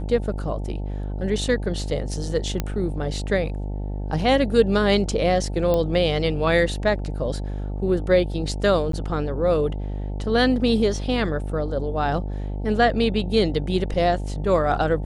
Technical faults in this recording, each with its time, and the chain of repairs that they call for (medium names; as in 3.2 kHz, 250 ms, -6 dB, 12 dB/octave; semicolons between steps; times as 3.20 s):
buzz 50 Hz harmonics 18 -28 dBFS
2.60 s: pop -10 dBFS
5.74 s: pop -11 dBFS
8.92–8.93 s: dropout 13 ms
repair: de-click; de-hum 50 Hz, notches 18; interpolate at 8.92 s, 13 ms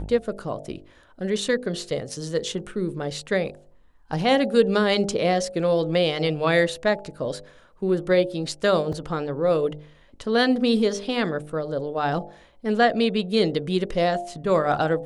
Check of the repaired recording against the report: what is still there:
nothing left